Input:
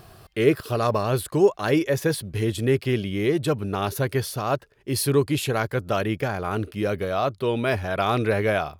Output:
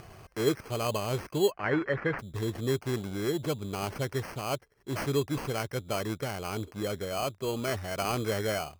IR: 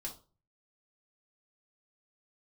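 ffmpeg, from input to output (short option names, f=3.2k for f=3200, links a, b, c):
-filter_complex "[0:a]acompressor=mode=upward:threshold=-33dB:ratio=2.5,acrusher=samples=12:mix=1:aa=0.000001,asplit=3[a][b][c];[a]afade=t=out:st=1.5:d=0.02[d];[b]lowpass=f=1.8k:t=q:w=2.6,afade=t=in:st=1.5:d=0.02,afade=t=out:st=2.18:d=0.02[e];[c]afade=t=in:st=2.18:d=0.02[f];[d][e][f]amix=inputs=3:normalize=0,volume=-8dB"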